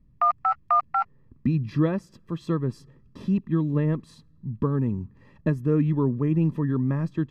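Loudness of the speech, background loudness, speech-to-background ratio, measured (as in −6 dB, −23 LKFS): −26.0 LKFS, −24.5 LKFS, −1.5 dB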